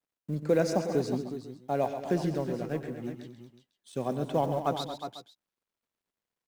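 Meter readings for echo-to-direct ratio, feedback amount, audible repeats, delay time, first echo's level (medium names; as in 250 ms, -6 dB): -5.5 dB, no regular repeats, 5, 93 ms, -16.5 dB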